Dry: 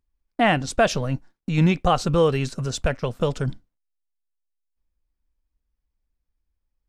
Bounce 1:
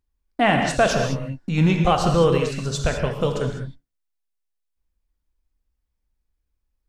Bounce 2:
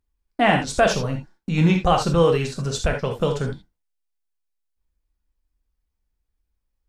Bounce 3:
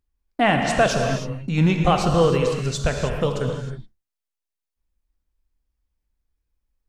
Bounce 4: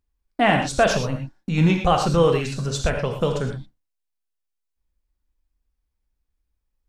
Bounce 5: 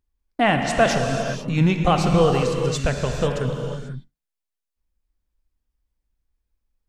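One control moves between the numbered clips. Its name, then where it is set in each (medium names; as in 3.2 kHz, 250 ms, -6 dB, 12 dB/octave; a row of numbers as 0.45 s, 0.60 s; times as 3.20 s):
gated-style reverb, gate: 230 ms, 100 ms, 340 ms, 140 ms, 520 ms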